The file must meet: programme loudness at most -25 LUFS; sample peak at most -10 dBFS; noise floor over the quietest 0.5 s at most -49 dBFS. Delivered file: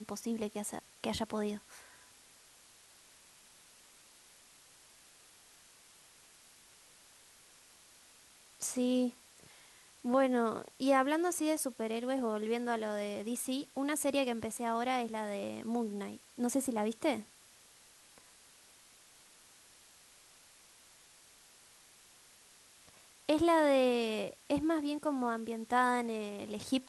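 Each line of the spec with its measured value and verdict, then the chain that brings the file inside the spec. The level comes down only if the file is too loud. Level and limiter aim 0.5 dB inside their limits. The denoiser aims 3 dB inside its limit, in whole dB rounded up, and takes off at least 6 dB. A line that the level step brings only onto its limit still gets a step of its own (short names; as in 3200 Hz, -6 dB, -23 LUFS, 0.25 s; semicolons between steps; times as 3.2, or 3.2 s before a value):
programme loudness -34.0 LUFS: OK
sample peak -17.5 dBFS: OK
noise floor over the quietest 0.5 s -61 dBFS: OK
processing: none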